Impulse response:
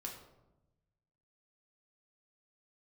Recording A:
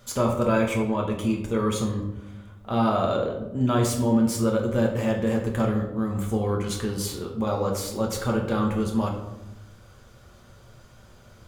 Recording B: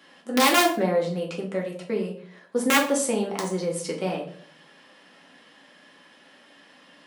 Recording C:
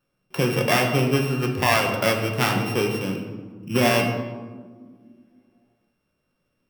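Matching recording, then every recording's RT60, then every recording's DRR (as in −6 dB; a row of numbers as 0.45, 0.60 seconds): A; 1.0, 0.55, 1.7 seconds; −1.0, −2.0, 1.0 decibels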